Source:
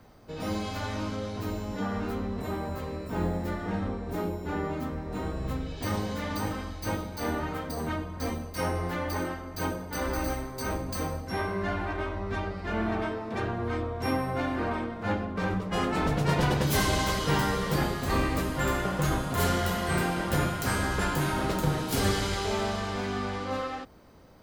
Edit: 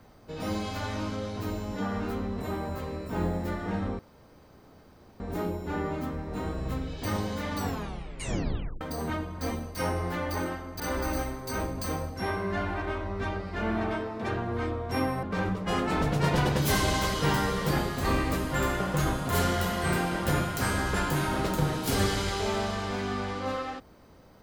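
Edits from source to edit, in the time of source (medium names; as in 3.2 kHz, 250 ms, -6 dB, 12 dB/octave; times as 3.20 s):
3.99 s: insert room tone 1.21 s
6.35 s: tape stop 1.25 s
9.59–9.91 s: delete
14.34–15.28 s: delete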